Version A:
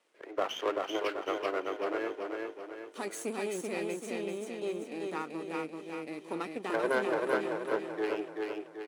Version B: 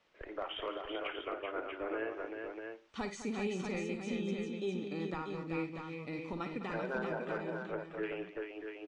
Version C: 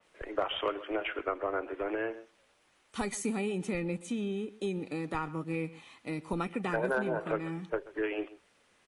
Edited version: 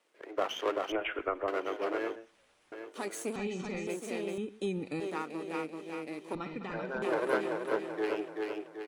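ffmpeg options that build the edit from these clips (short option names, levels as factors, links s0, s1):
-filter_complex "[2:a]asplit=3[s0][s1][s2];[1:a]asplit=2[s3][s4];[0:a]asplit=6[s5][s6][s7][s8][s9][s10];[s5]atrim=end=0.922[s11];[s0]atrim=start=0.918:end=1.482[s12];[s6]atrim=start=1.478:end=2.162[s13];[s1]atrim=start=2.158:end=2.722[s14];[s7]atrim=start=2.718:end=3.362[s15];[s3]atrim=start=3.358:end=3.872[s16];[s8]atrim=start=3.868:end=4.382[s17];[s2]atrim=start=4.378:end=5.002[s18];[s9]atrim=start=4.998:end=6.352[s19];[s4]atrim=start=6.348:end=7.022[s20];[s10]atrim=start=7.018[s21];[s11][s12]acrossfade=d=0.004:c1=hsin:c2=hsin[s22];[s22][s13]acrossfade=d=0.004:c1=hsin:c2=hsin[s23];[s23][s14]acrossfade=d=0.004:c1=hsin:c2=hsin[s24];[s24][s15]acrossfade=d=0.004:c1=hsin:c2=hsin[s25];[s25][s16]acrossfade=d=0.004:c1=hsin:c2=hsin[s26];[s26][s17]acrossfade=d=0.004:c1=hsin:c2=hsin[s27];[s27][s18]acrossfade=d=0.004:c1=hsin:c2=hsin[s28];[s28][s19]acrossfade=d=0.004:c1=hsin:c2=hsin[s29];[s29][s20]acrossfade=d=0.004:c1=hsin:c2=hsin[s30];[s30][s21]acrossfade=d=0.004:c1=hsin:c2=hsin"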